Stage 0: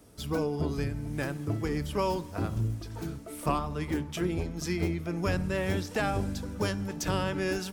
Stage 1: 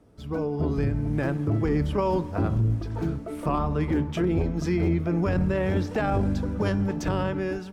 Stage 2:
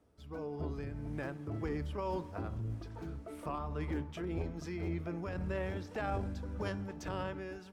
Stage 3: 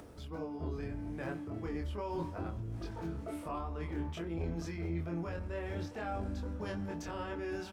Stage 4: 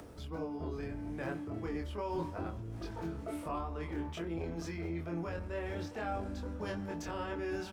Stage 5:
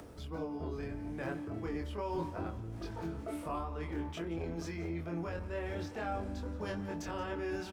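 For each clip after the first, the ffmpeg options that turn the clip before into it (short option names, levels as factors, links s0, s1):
-af "lowpass=f=1200:p=1,dynaudnorm=f=120:g=11:m=2.82,alimiter=limit=0.15:level=0:latency=1:release=11"
-af "lowshelf=f=310:g=-8.5,tremolo=f=1.8:d=0.33,equalizer=f=69:t=o:w=0.51:g=11.5,volume=0.376"
-filter_complex "[0:a]areverse,acompressor=threshold=0.00562:ratio=6,areverse,asplit=2[s0][s1];[s1]adelay=24,volume=0.794[s2];[s0][s2]amix=inputs=2:normalize=0,acompressor=mode=upward:threshold=0.00282:ratio=2.5,volume=2.24"
-filter_complex "[0:a]acrossover=split=250|4700[s0][s1][s2];[s0]alimiter=level_in=5.01:limit=0.0631:level=0:latency=1:release=350,volume=0.2[s3];[s2]acrusher=bits=4:mode=log:mix=0:aa=0.000001[s4];[s3][s1][s4]amix=inputs=3:normalize=0,volume=1.19"
-af "aecho=1:1:176:0.133"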